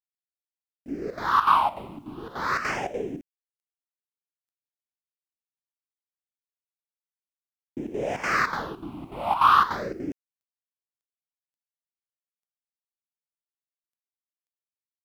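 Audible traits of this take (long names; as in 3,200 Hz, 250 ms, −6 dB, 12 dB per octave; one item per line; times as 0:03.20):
chopped level 3.4 Hz, depth 65%, duty 75%
phaser sweep stages 6, 0.41 Hz, lowest notch 440–1,200 Hz
a quantiser's noise floor 12 bits, dither none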